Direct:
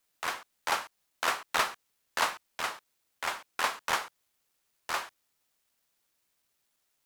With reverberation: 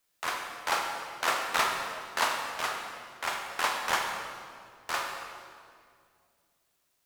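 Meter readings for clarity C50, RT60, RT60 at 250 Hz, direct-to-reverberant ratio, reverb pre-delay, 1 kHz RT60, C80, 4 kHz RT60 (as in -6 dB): 3.0 dB, 2.2 s, 2.8 s, 1.5 dB, 21 ms, 2.0 s, 4.5 dB, 1.7 s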